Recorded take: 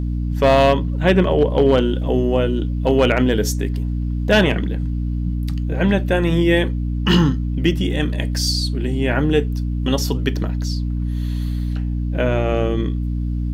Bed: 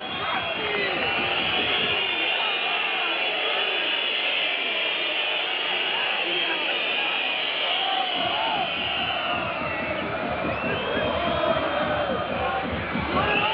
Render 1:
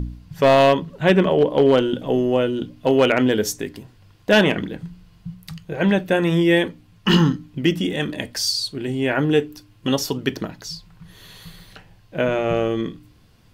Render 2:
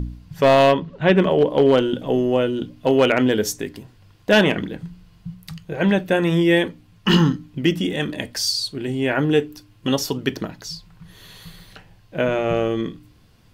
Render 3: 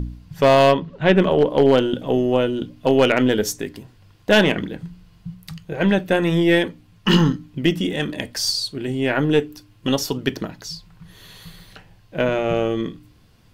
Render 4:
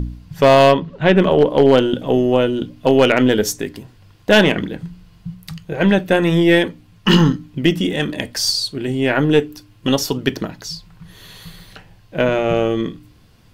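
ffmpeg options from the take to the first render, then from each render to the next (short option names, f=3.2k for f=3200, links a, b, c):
-af "bandreject=f=60:t=h:w=4,bandreject=f=120:t=h:w=4,bandreject=f=180:t=h:w=4,bandreject=f=240:t=h:w=4,bandreject=f=300:t=h:w=4"
-filter_complex "[0:a]asplit=3[a][b][c];[a]afade=t=out:st=0.71:d=0.02[d];[b]lowpass=4.3k,afade=t=in:st=0.71:d=0.02,afade=t=out:st=1.16:d=0.02[e];[c]afade=t=in:st=1.16:d=0.02[f];[d][e][f]amix=inputs=3:normalize=0"
-af "aeval=exprs='0.531*(cos(1*acos(clip(val(0)/0.531,-1,1)))-cos(1*PI/2))+0.075*(cos(2*acos(clip(val(0)/0.531,-1,1)))-cos(2*PI/2))':c=same"
-af "volume=3.5dB,alimiter=limit=-2dB:level=0:latency=1"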